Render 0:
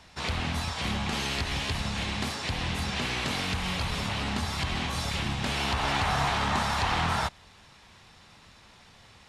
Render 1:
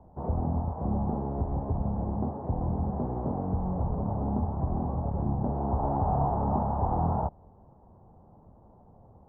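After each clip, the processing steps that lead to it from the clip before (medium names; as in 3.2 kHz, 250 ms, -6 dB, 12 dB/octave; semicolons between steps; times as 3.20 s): steep low-pass 850 Hz 36 dB/octave; trim +3.5 dB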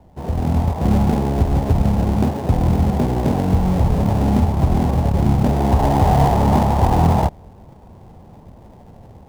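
level rider gain up to 7.5 dB; in parallel at -9.5 dB: sample-rate reducer 1.2 kHz, jitter 20%; on the sum: trim +3.5 dB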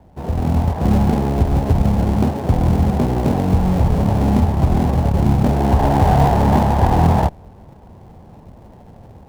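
sliding maximum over 5 samples; trim +1 dB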